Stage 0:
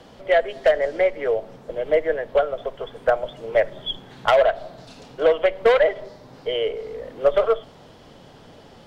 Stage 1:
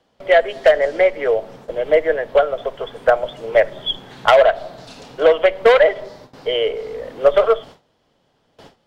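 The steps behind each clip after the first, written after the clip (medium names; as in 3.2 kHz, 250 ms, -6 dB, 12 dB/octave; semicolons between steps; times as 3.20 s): gate with hold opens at -35 dBFS; bass shelf 350 Hz -4.5 dB; trim +6 dB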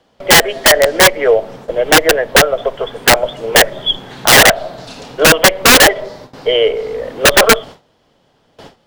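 integer overflow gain 8 dB; trim +7 dB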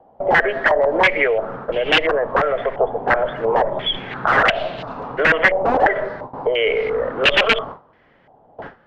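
peak limiter -12 dBFS, peak gain reduction 11 dB; step-sequenced low-pass 2.9 Hz 780–2800 Hz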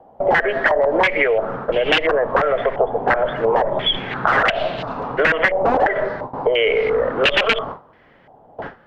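compression, threshold -16 dBFS, peak gain reduction 7.5 dB; trim +3.5 dB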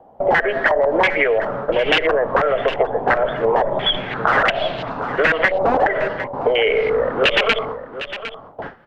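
delay 757 ms -12.5 dB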